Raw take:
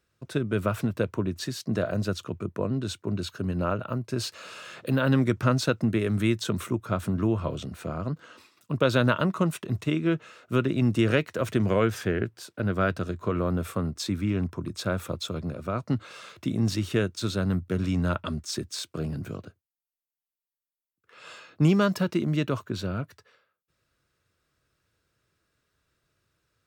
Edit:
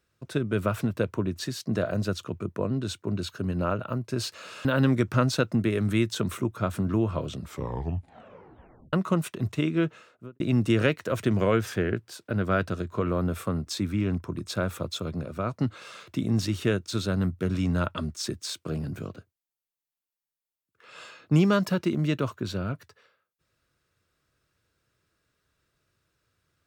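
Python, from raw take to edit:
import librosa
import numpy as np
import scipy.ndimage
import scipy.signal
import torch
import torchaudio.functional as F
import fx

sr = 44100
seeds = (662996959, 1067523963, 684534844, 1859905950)

y = fx.studio_fade_out(x, sr, start_s=10.15, length_s=0.54)
y = fx.edit(y, sr, fx.cut(start_s=4.65, length_s=0.29),
    fx.tape_stop(start_s=7.61, length_s=1.61), tone=tone)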